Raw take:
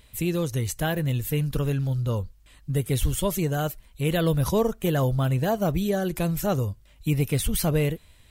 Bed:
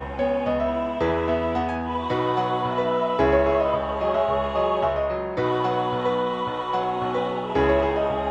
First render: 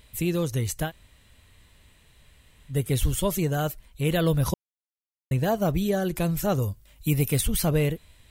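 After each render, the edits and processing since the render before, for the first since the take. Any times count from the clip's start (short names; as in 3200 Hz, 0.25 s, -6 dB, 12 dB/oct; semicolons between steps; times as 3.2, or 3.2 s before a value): 0.87–2.73 room tone, crossfade 0.10 s; 4.54–5.31 mute; 6.62–7.41 high shelf 8600 Hz +11 dB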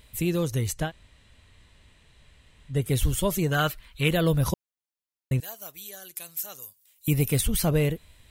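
0.73–2.82 LPF 7500 Hz; 3.51–4.09 band shelf 2200 Hz +9.5 dB 2.4 oct; 5.4–7.08 differentiator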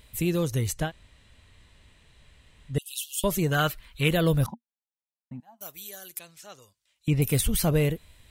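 2.78–3.24 brick-wall FIR high-pass 2500 Hz; 4.46–5.61 double band-pass 440 Hz, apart 1.8 oct; 6.19–7.22 air absorption 110 m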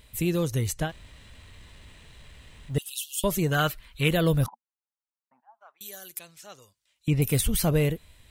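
0.89–2.9 G.711 law mismatch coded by mu; 4.48–5.81 Butterworth band-pass 1100 Hz, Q 1.4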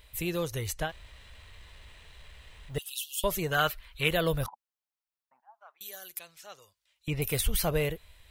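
graphic EQ 125/250/8000 Hz -7/-11/-5 dB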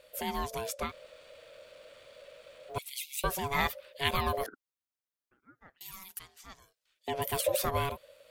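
ring modulator 560 Hz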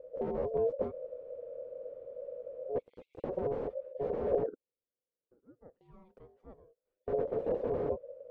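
wrapped overs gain 27 dB; synth low-pass 490 Hz, resonance Q 5.2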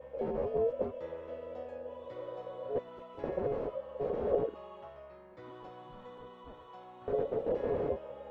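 add bed -26.5 dB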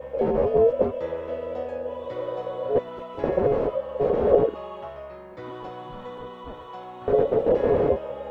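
gain +12 dB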